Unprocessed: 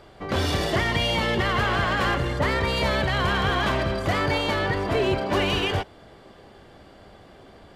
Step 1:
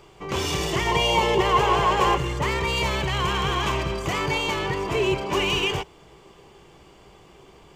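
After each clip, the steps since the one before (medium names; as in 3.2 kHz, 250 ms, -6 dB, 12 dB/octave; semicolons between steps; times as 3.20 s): treble shelf 3.8 kHz +8 dB; time-frequency box 0.86–2.16 s, 350–1100 Hz +8 dB; rippled EQ curve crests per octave 0.73, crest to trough 9 dB; trim -3 dB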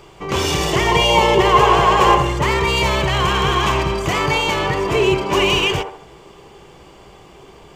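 feedback echo behind a band-pass 72 ms, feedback 40%, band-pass 740 Hz, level -6 dB; trim +6.5 dB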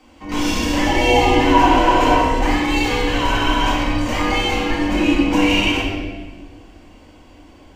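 in parallel at -11 dB: crossover distortion -35 dBFS; on the sum: frequency shift -96 Hz; reverberation RT60 1.5 s, pre-delay 4 ms, DRR -5.5 dB; trim -10 dB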